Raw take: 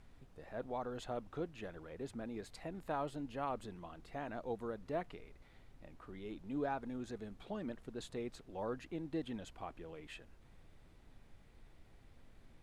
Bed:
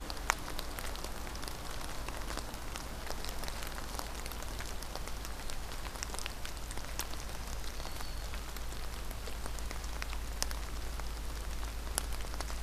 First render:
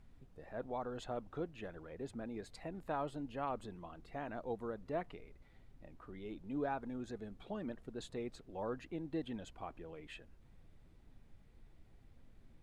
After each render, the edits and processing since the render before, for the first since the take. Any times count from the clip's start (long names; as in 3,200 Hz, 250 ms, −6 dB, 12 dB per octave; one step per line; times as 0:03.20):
broadband denoise 6 dB, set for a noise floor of −62 dBFS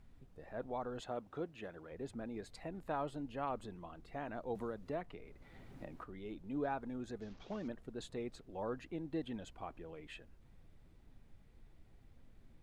0:01.00–0:01.91: high-pass filter 140 Hz 6 dB per octave
0:04.55–0:06.04: multiband upward and downward compressor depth 70%
0:07.21–0:07.68: linear delta modulator 32 kbit/s, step −56.5 dBFS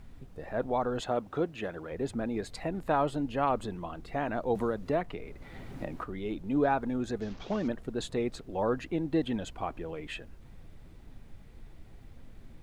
level +11.5 dB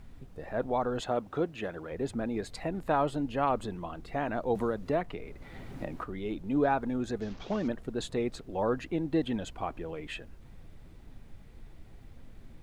no processing that can be heard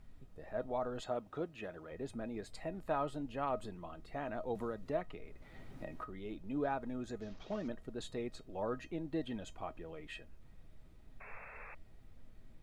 tuned comb filter 630 Hz, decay 0.16 s, harmonics all, mix 70%
0:11.20–0:11.75: sound drawn into the spectrogram noise 410–2,700 Hz −52 dBFS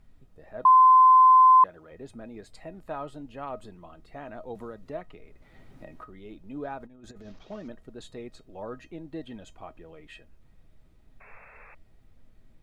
0:00.65–0:01.64: beep over 1,030 Hz −12 dBFS
0:06.80–0:07.39: compressor whose output falls as the input rises −45 dBFS, ratio −0.5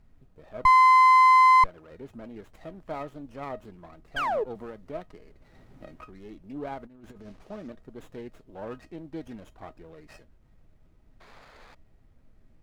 0:04.16–0:04.44: sound drawn into the spectrogram fall 390–1,700 Hz −26 dBFS
windowed peak hold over 9 samples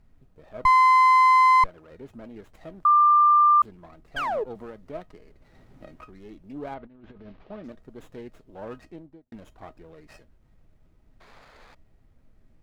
0:02.85–0:03.62: beep over 1,190 Hz −13.5 dBFS
0:06.74–0:07.64: low-pass filter 3,900 Hz 24 dB per octave
0:08.83–0:09.32: fade out and dull